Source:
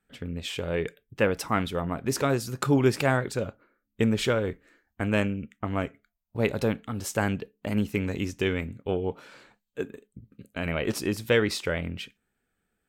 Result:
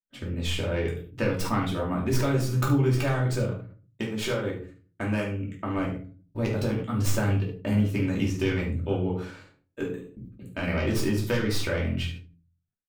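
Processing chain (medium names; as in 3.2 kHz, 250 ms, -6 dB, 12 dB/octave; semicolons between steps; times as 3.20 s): tracing distortion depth 0.13 ms; dynamic bell 110 Hz, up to +5 dB, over -44 dBFS, Q 2.4; compression 6:1, threshold -26 dBFS, peak gain reduction 10.5 dB; expander -46 dBFS; 3.45–5.77 s: bass shelf 160 Hz -11.5 dB; early reflections 50 ms -16 dB, 72 ms -13 dB; simulated room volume 220 m³, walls furnished, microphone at 2.7 m; decay stretcher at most 110 dB/s; trim -2 dB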